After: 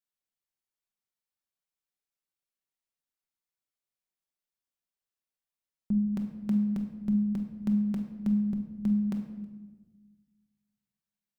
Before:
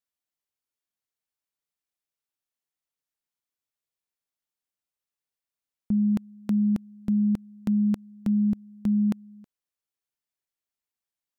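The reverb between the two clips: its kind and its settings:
rectangular room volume 770 cubic metres, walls mixed, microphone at 1.1 metres
level −5.5 dB

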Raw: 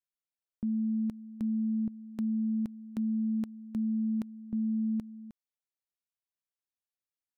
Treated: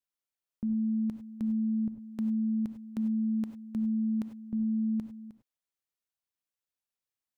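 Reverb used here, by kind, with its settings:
reverb whose tail is shaped and stops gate 120 ms rising, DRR 8 dB

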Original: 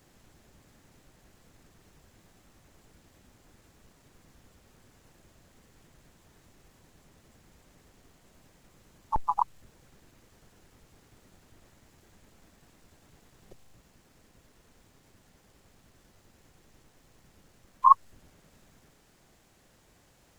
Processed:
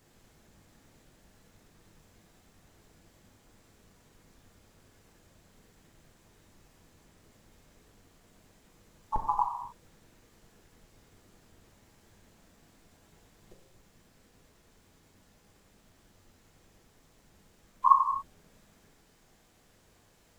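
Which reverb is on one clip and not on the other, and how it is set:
reverb whose tail is shaped and stops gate 310 ms falling, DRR 1.5 dB
level −3.5 dB

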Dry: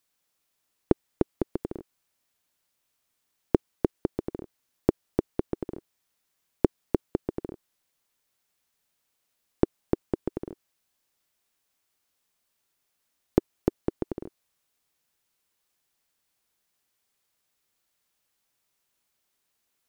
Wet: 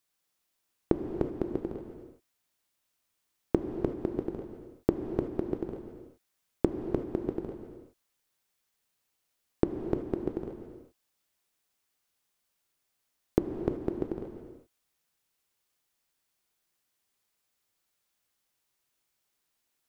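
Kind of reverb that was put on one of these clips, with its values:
reverb whose tail is shaped and stops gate 400 ms flat, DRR 4.5 dB
level −3.5 dB

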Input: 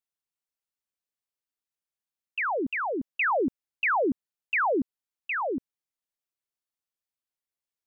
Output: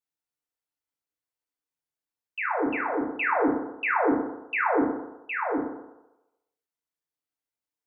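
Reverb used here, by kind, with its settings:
feedback delay network reverb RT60 0.97 s, low-frequency decay 0.75×, high-frequency decay 0.3×, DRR −4 dB
level −5 dB

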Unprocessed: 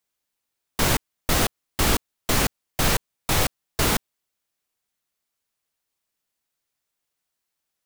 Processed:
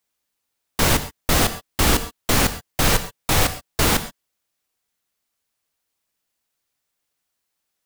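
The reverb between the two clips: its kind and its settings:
reverb whose tail is shaped and stops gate 150 ms flat, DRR 10.5 dB
level +3 dB

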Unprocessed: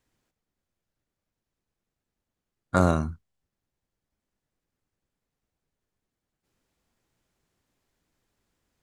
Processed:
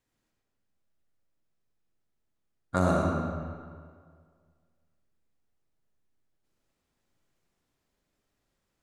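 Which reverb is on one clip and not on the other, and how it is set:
comb and all-pass reverb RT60 1.9 s, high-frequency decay 0.75×, pre-delay 30 ms, DRR −1 dB
level −5.5 dB

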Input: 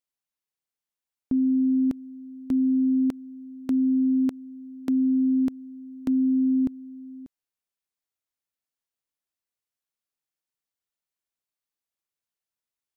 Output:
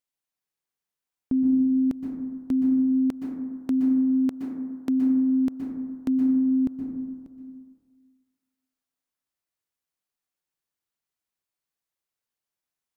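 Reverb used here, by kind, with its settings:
dense smooth reverb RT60 1.6 s, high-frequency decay 0.25×, pre-delay 110 ms, DRR 2 dB

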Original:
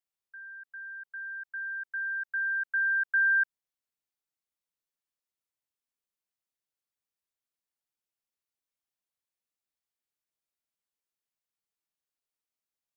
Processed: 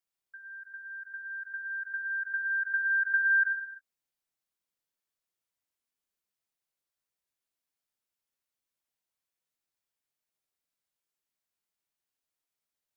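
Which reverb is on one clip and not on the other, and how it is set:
reverb whose tail is shaped and stops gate 380 ms falling, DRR 2 dB

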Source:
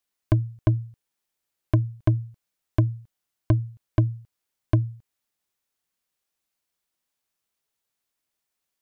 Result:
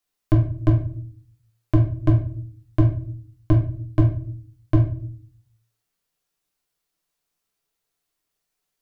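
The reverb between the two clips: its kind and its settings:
rectangular room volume 45 cubic metres, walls mixed, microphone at 0.78 metres
level −1 dB

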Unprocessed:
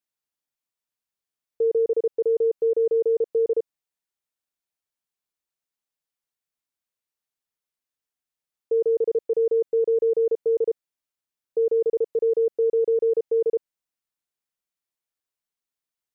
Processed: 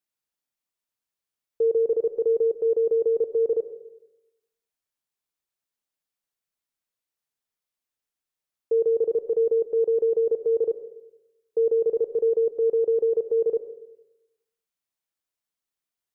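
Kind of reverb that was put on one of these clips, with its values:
comb and all-pass reverb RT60 0.9 s, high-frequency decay 0.35×, pre-delay 55 ms, DRR 12.5 dB

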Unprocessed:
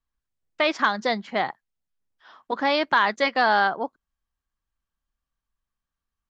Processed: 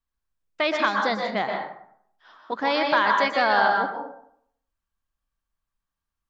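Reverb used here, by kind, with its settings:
dense smooth reverb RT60 0.66 s, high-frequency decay 0.55×, pre-delay 110 ms, DRR 1.5 dB
level −2 dB

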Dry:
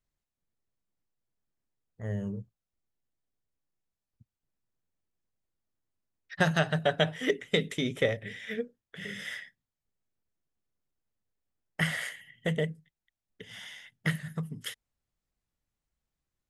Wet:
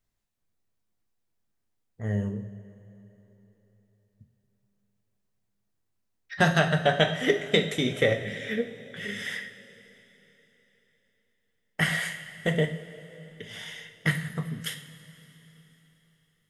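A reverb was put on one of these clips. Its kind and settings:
coupled-rooms reverb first 0.46 s, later 3.9 s, from −16 dB, DRR 4 dB
level +3.5 dB

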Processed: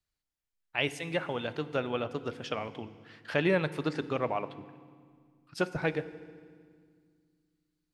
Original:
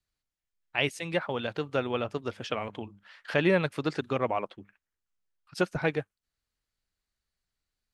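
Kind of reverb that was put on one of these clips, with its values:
feedback delay network reverb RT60 1.9 s, low-frequency decay 1.6×, high-frequency decay 0.9×, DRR 13.5 dB
level −2.5 dB

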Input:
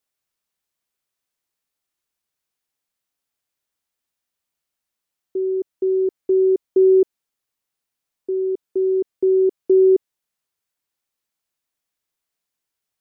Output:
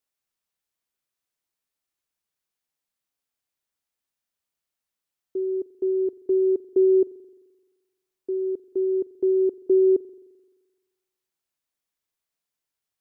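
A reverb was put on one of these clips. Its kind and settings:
spring reverb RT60 1.3 s, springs 43 ms, DRR 18 dB
level −4 dB

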